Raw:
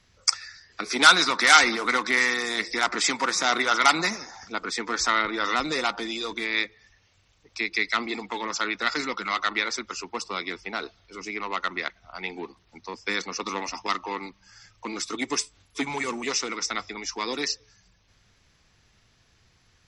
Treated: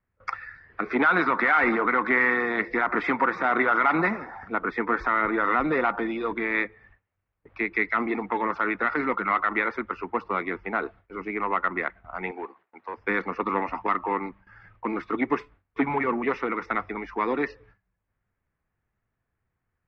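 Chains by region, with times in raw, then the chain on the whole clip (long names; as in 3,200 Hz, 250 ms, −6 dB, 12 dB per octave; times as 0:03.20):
0:12.31–0:12.97: high-pass filter 480 Hz + gain into a clipping stage and back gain 33 dB
whole clip: low-pass filter 1,900 Hz 24 dB per octave; noise gate with hold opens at −50 dBFS; brickwall limiter −17 dBFS; level +5.5 dB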